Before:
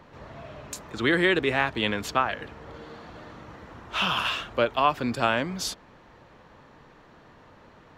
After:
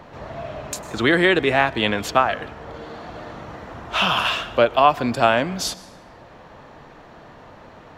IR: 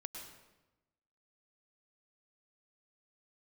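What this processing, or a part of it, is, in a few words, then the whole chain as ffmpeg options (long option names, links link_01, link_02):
ducked reverb: -filter_complex "[0:a]asplit=3[link_01][link_02][link_03];[1:a]atrim=start_sample=2205[link_04];[link_02][link_04]afir=irnorm=-1:irlink=0[link_05];[link_03]apad=whole_len=351563[link_06];[link_05][link_06]sidechaincompress=threshold=-27dB:ratio=8:attack=9:release=1220,volume=-2.5dB[link_07];[link_01][link_07]amix=inputs=2:normalize=0,equalizer=frequency=690:width_type=o:width=0.48:gain=6,volume=4dB"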